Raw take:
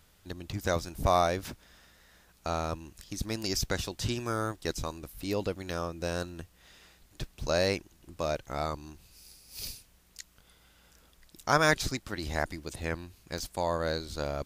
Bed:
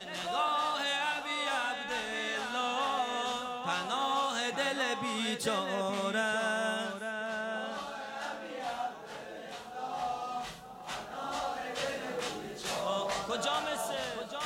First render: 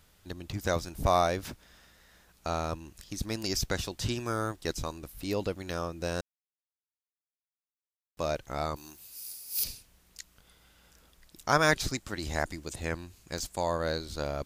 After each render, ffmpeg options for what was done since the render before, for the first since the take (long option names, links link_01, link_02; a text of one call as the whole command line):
ffmpeg -i in.wav -filter_complex "[0:a]asettb=1/sr,asplit=3[link_01][link_02][link_03];[link_01]atrim=end=8.764[link_04];[link_02]atrim=start=8.76:end=9.64,asetpts=PTS-STARTPTS,afade=type=in:duration=0.004:curve=qsin,afade=type=out:start_time=0.876:duration=0.004:curve=qsin,aemphasis=mode=production:type=bsi[link_05];[link_03]atrim=start=9.636[link_06];[link_04][link_05]acrossfade=duration=0.004:curve1=hsin:curve2=qsin[link_07];[link_07][link_06]acrossfade=duration=0.004:curve1=qsin:curve2=hsin,asettb=1/sr,asplit=3[link_08][link_09][link_10];[link_08]atrim=end=11.934[link_11];[link_09]atrim=start=11.93:end=13.72,asetpts=PTS-STARTPTS,afade=type=in:duration=0.004:curve=qsin,afade=type=out:start_time=1.786:duration=0.004:curve=qsin,equalizer=frequency=7300:width=2.6:gain=6[link_12];[link_10]atrim=start=13.716[link_13];[link_11][link_12]acrossfade=duration=0.004:curve1=hsin:curve2=qsin[link_14];[link_14][link_13]acrossfade=duration=0.004:curve1=qsin:curve2=hsin,asplit=3[link_15][link_16][link_17];[link_15]atrim=end=6.21,asetpts=PTS-STARTPTS,afade=type=out:start_time=6.206:duration=0.004:curve=hsin[link_18];[link_16]atrim=start=6.21:end=8.17,asetpts=PTS-STARTPTS,volume=0[link_19];[link_17]atrim=start=8.17,asetpts=PTS-STARTPTS,afade=type=in:duration=0.004:curve=hsin[link_20];[link_18][link_19][link_20]concat=n=3:v=0:a=1" out.wav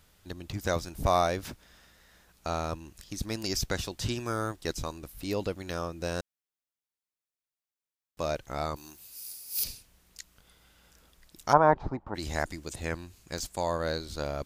ffmpeg -i in.wav -filter_complex "[0:a]asplit=3[link_01][link_02][link_03];[link_01]afade=type=out:start_time=11.52:duration=0.02[link_04];[link_02]lowpass=frequency=890:width_type=q:width=4.5,afade=type=in:start_time=11.52:duration=0.02,afade=type=out:start_time=12.14:duration=0.02[link_05];[link_03]afade=type=in:start_time=12.14:duration=0.02[link_06];[link_04][link_05][link_06]amix=inputs=3:normalize=0" out.wav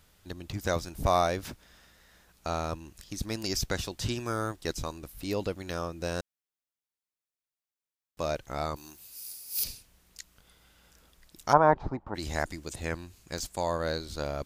ffmpeg -i in.wav -af anull out.wav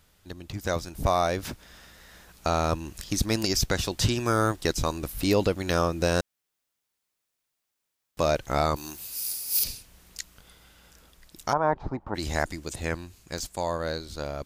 ffmpeg -i in.wav -af "dynaudnorm=framelen=230:gausssize=13:maxgain=11.5dB,alimiter=limit=-12dB:level=0:latency=1:release=396" out.wav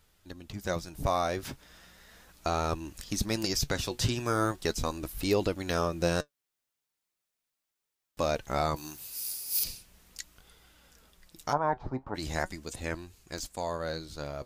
ffmpeg -i in.wav -af "flanger=delay=2.1:depth=6.2:regen=64:speed=0.38:shape=triangular" out.wav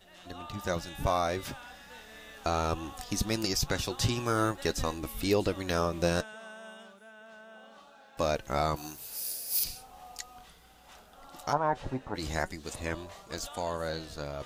ffmpeg -i in.wav -i bed.wav -filter_complex "[1:a]volume=-15dB[link_01];[0:a][link_01]amix=inputs=2:normalize=0" out.wav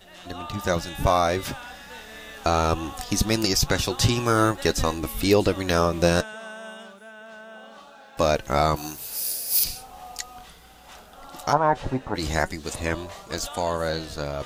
ffmpeg -i in.wav -af "volume=8dB" out.wav